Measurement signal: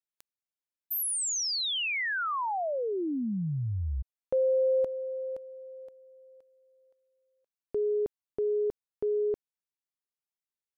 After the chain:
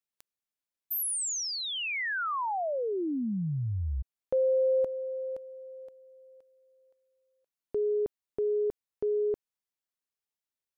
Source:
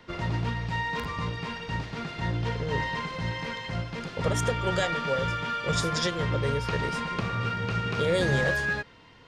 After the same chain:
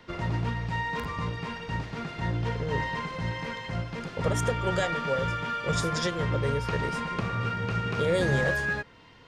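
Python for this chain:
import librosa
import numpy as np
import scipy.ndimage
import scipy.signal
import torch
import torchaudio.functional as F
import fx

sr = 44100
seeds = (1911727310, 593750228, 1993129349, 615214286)

y = fx.dynamic_eq(x, sr, hz=4000.0, q=0.92, threshold_db=-48.0, ratio=4.0, max_db=-4)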